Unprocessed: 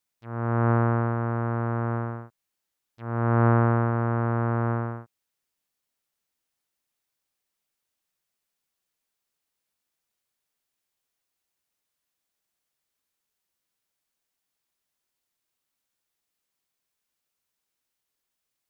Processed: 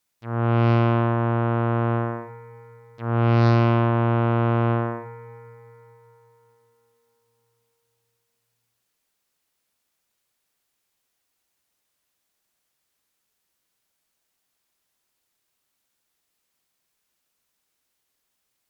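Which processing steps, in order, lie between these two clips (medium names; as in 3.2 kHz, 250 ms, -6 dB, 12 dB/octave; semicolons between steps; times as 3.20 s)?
algorithmic reverb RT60 4.3 s, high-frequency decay 0.55×, pre-delay 15 ms, DRR 9 dB; Chebyshev shaper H 5 -15 dB, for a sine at -9 dBFS; trim +1 dB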